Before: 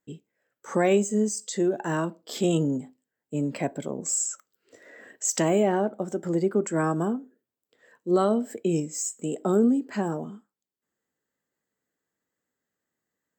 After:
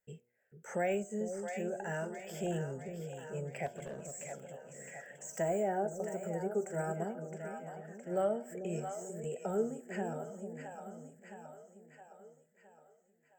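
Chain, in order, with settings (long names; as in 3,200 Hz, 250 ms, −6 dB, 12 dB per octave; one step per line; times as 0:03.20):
de-essing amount 85%
on a send: echo with a time of its own for lows and highs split 550 Hz, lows 443 ms, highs 665 ms, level −8.5 dB
on the sum: flanger 0.32 Hz, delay 2 ms, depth 2 ms, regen +76%
phaser with its sweep stopped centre 1,100 Hz, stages 6
hum removal 120.8 Hz, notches 13
in parallel at +0.5 dB: downward compressor, threshold −47 dBFS, peak gain reduction 20.5 dB
0:03.66–0:04.32: on the sum: hard clipping −35 dBFS, distortion −30 dB
0:05.36–0:06.96: drawn EQ curve 1,400 Hz 0 dB, 2,800 Hz −8 dB, 9,100 Hz +6 dB
level −3.5 dB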